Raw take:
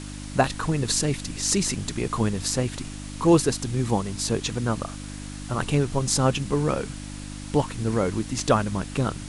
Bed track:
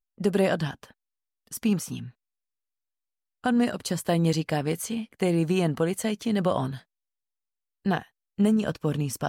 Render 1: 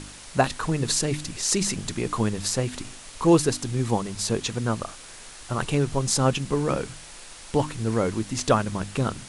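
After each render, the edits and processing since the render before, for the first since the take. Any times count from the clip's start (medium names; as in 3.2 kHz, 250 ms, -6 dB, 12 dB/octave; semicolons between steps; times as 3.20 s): de-hum 50 Hz, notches 6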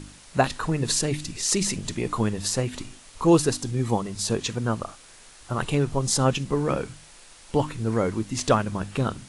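noise print and reduce 6 dB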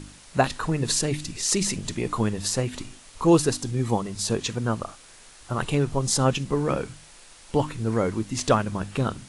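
no audible change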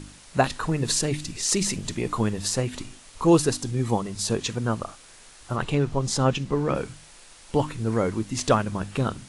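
0.67–2.55 s: careless resampling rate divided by 2×, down none, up filtered; 5.56–6.75 s: distance through air 54 m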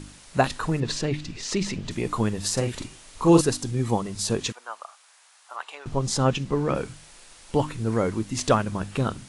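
0.80–1.91 s: low-pass 4.2 kHz; 2.53–3.41 s: doubling 42 ms -6 dB; 4.52–5.86 s: ladder high-pass 670 Hz, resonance 30%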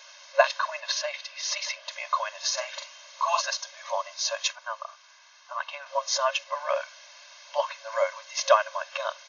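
FFT band-pass 540–6800 Hz; comb 1.9 ms, depth 100%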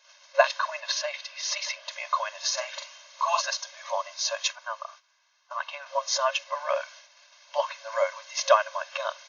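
gate -48 dBFS, range -13 dB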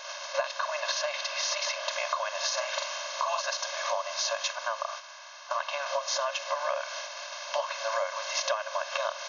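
spectral levelling over time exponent 0.6; compression 6:1, threshold -27 dBFS, peak gain reduction 15 dB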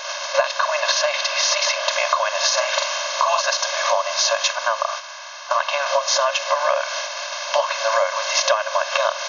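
trim +11 dB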